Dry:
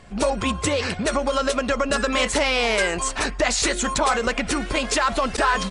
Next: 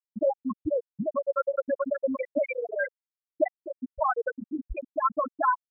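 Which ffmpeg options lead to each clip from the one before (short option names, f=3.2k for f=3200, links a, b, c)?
-af "aecho=1:1:254|508|762|1016:0.355|0.131|0.0486|0.018,afftfilt=real='re*gte(hypot(re,im),0.631)':imag='im*gte(hypot(re,im),0.631)':win_size=1024:overlap=0.75,volume=-1dB"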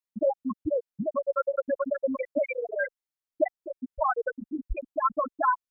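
-af "asubboost=boost=2:cutoff=61"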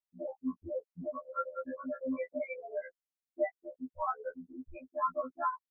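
-af "afftfilt=real='re*2*eq(mod(b,4),0)':imag='im*2*eq(mod(b,4),0)':win_size=2048:overlap=0.75,volume=-5.5dB"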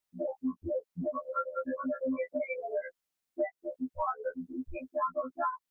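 -af "acompressor=threshold=-39dB:ratio=3,volume=8dB"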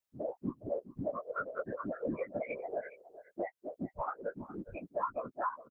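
-af "afftfilt=real='hypot(re,im)*cos(2*PI*random(0))':imag='hypot(re,im)*sin(2*PI*random(1))':win_size=512:overlap=0.75,aecho=1:1:413:0.168,volume=2dB"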